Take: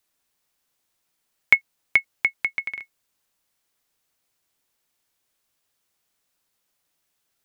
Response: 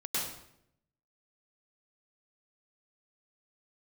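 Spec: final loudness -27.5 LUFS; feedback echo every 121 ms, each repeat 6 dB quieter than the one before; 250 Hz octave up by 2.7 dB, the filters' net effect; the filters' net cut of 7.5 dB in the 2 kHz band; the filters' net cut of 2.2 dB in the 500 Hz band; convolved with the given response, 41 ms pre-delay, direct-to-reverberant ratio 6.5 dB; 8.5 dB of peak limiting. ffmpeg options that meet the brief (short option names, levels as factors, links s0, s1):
-filter_complex "[0:a]equalizer=f=250:t=o:g=4.5,equalizer=f=500:t=o:g=-3.5,equalizer=f=2000:t=o:g=-8,alimiter=limit=0.224:level=0:latency=1,aecho=1:1:121|242|363|484|605|726:0.501|0.251|0.125|0.0626|0.0313|0.0157,asplit=2[s0][s1];[1:a]atrim=start_sample=2205,adelay=41[s2];[s1][s2]afir=irnorm=-1:irlink=0,volume=0.251[s3];[s0][s3]amix=inputs=2:normalize=0,volume=1.68"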